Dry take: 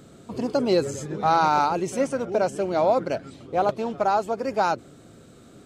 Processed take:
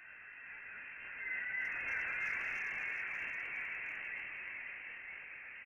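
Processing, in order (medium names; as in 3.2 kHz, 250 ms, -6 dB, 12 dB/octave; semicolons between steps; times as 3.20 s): one-bit comparator; Doppler pass-by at 2.04 s, 14 m/s, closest 8.9 m; gate -26 dBFS, range -20 dB; high-pass 190 Hz 12 dB/octave; high-order bell 1.1 kHz +13.5 dB 1 oct; transient shaper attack -7 dB, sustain -11 dB; compression 6:1, threshold -37 dBFS, peak gain reduction 13.5 dB; chorus voices 4, 1 Hz, delay 20 ms, depth 3.3 ms; ever faster or slower copies 449 ms, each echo -2 st, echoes 3; frequency inversion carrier 2.9 kHz; speakerphone echo 340 ms, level -8 dB; decay stretcher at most 24 dB/s; trim +1.5 dB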